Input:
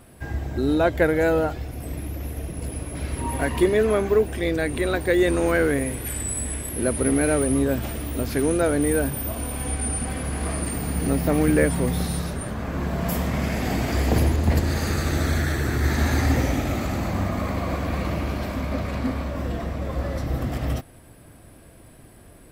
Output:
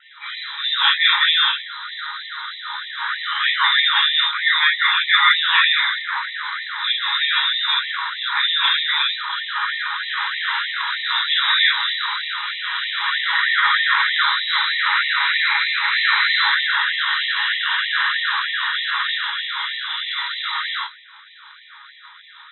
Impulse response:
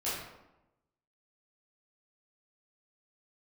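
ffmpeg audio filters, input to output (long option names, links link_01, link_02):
-filter_complex "[0:a]lowshelf=frequency=320:gain=-11.5,bandreject=frequency=60:width_type=h:width=6,bandreject=frequency=120:width_type=h:width=6,bandreject=frequency=180:width_type=h:width=6,bandreject=frequency=240:width_type=h:width=6,bandreject=frequency=300:width_type=h:width=6,bandreject=frequency=360:width_type=h:width=6,aeval=exprs='val(0)*sin(2*PI*76*n/s)':channel_layout=same,asplit=2[link_01][link_02];[link_02]aeval=exprs='(mod(15*val(0)+1,2)-1)/15':channel_layout=same,volume=-7.5dB[link_03];[link_01][link_03]amix=inputs=2:normalize=0,aexciter=amount=12.5:drive=1.4:freq=2100[link_04];[1:a]atrim=start_sample=2205,atrim=end_sample=3969[link_05];[link_04][link_05]afir=irnorm=-1:irlink=0,lowpass=frequency=3400:width_type=q:width=0.5098,lowpass=frequency=3400:width_type=q:width=0.6013,lowpass=frequency=3400:width_type=q:width=0.9,lowpass=frequency=3400:width_type=q:width=2.563,afreqshift=-4000,afftfilt=real='re*gte(b*sr/1024,780*pow(1800/780,0.5+0.5*sin(2*PI*3.2*pts/sr)))':imag='im*gte(b*sr/1024,780*pow(1800/780,0.5+0.5*sin(2*PI*3.2*pts/sr)))':win_size=1024:overlap=0.75,volume=2.5dB"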